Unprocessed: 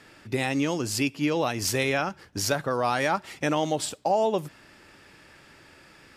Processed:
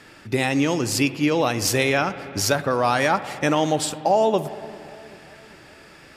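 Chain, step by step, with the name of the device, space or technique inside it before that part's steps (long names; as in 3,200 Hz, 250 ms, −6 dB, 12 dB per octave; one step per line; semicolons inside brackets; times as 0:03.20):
dub delay into a spring reverb (feedback echo with a low-pass in the loop 392 ms, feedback 65%, low-pass 1,100 Hz, level −21.5 dB; spring reverb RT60 2.5 s, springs 58 ms, chirp 75 ms, DRR 13.5 dB)
level +5 dB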